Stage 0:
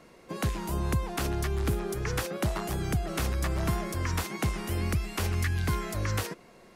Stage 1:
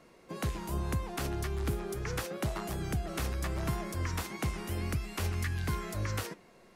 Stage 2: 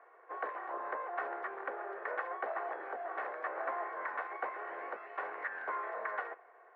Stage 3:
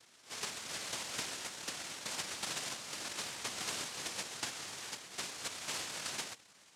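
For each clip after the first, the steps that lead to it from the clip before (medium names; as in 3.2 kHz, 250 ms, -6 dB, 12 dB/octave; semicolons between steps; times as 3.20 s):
flange 0.81 Hz, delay 7.1 ms, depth 9.2 ms, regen +82%
comb filter that takes the minimum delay 2.7 ms; elliptic band-pass 510–1800 Hz, stop band 70 dB; trim +5.5 dB
noise-vocoded speech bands 1; pre-echo 51 ms -14.5 dB; trim -2.5 dB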